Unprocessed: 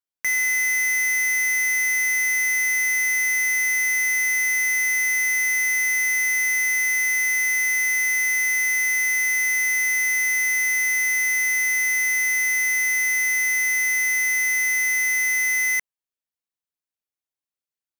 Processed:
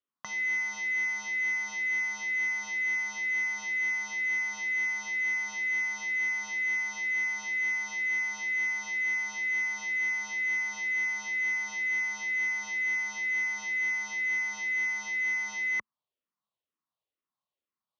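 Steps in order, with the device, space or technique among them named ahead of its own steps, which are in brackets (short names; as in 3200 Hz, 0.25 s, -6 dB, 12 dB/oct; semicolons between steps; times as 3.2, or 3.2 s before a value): barber-pole phaser into a guitar amplifier (endless phaser -2.1 Hz; soft clip -28.5 dBFS, distortion -10 dB; speaker cabinet 92–3800 Hz, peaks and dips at 220 Hz +4 dB, 590 Hz +3 dB, 1100 Hz +9 dB, 1600 Hz -8 dB, 2300 Hz -7 dB); gain +6 dB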